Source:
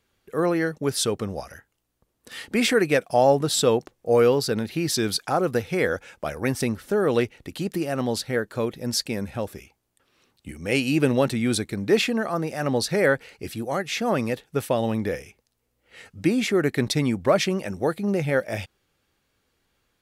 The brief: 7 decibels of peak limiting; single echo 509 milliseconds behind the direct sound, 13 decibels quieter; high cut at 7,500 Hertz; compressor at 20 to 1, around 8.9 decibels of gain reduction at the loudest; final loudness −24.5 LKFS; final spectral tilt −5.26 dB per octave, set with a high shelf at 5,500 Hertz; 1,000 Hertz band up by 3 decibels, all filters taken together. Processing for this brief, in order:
low-pass filter 7,500 Hz
parametric band 1,000 Hz +4.5 dB
high-shelf EQ 5,500 Hz −7.5 dB
downward compressor 20 to 1, threshold −21 dBFS
brickwall limiter −18 dBFS
single-tap delay 509 ms −13 dB
level +4.5 dB

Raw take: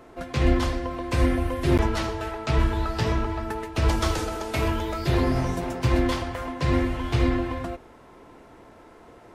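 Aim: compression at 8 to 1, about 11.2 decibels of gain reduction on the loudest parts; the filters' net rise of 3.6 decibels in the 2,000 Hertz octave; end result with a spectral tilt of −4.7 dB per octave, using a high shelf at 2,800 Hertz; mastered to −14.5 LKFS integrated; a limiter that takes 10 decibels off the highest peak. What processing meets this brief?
parametric band 2,000 Hz +3 dB
high-shelf EQ 2,800 Hz +3.5 dB
downward compressor 8 to 1, threshold −27 dBFS
level +21 dB
brickwall limiter −5 dBFS

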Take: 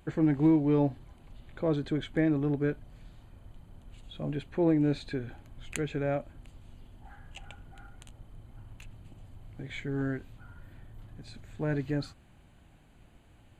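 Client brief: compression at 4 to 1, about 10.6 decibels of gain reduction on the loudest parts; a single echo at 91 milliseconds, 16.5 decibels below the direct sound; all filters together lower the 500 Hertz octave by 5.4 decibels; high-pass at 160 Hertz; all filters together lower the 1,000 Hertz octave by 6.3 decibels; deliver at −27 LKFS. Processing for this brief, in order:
high-pass filter 160 Hz
parametric band 500 Hz −5.5 dB
parametric band 1,000 Hz −6.5 dB
downward compressor 4 to 1, threshold −35 dBFS
single-tap delay 91 ms −16.5 dB
level +14 dB

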